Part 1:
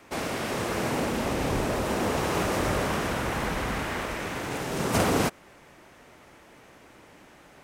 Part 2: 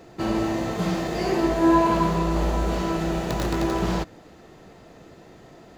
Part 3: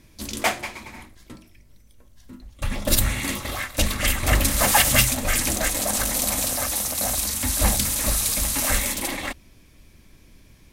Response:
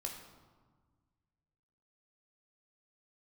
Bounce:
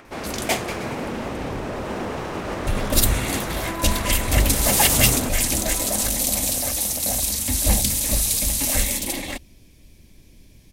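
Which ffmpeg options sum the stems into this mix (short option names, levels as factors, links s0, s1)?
-filter_complex "[0:a]acompressor=mode=upward:threshold=0.00794:ratio=2.5,volume=1[s0];[1:a]highpass=500,acrusher=bits=6:mode=log:mix=0:aa=0.000001,adelay=2050,volume=0.398[s1];[2:a]equalizer=f=1300:w=1.3:g=-11.5,adelay=50,volume=1.26[s2];[s0][s1]amix=inputs=2:normalize=0,highshelf=f=6100:g=-11,alimiter=limit=0.112:level=0:latency=1:release=121,volume=1[s3];[s2][s3]amix=inputs=2:normalize=0"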